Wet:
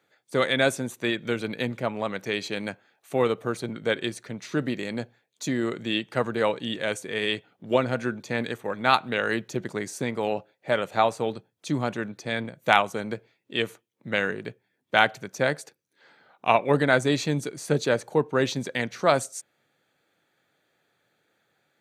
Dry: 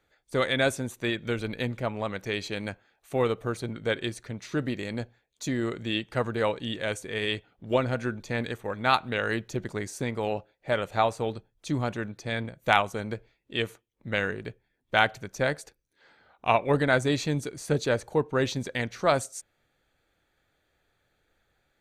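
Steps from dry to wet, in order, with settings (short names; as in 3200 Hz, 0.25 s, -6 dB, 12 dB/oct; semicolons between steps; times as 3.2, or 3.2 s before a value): HPF 130 Hz 24 dB/oct; gain +2.5 dB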